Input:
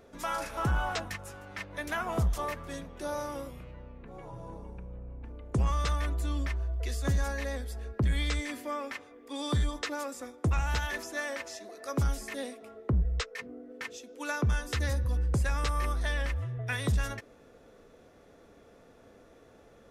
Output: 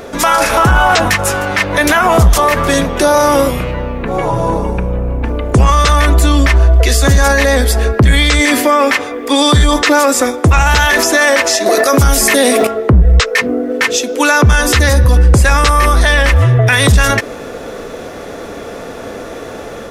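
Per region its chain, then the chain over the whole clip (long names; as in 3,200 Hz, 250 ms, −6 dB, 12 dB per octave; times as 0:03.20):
0:11.66–0:12.67: high-shelf EQ 11,000 Hz +9.5 dB + envelope flattener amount 50%
whole clip: low-shelf EQ 230 Hz −6.5 dB; automatic gain control gain up to 3.5 dB; boost into a limiter +29.5 dB; level −1 dB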